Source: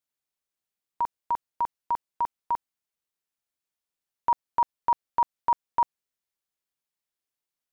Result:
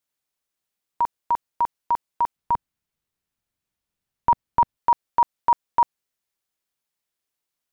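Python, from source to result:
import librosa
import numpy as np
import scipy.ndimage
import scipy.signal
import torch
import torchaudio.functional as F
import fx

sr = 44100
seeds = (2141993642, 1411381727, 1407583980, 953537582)

y = fx.bass_treble(x, sr, bass_db=12, treble_db=-3, at=(2.36, 4.77))
y = y * librosa.db_to_amplitude(5.0)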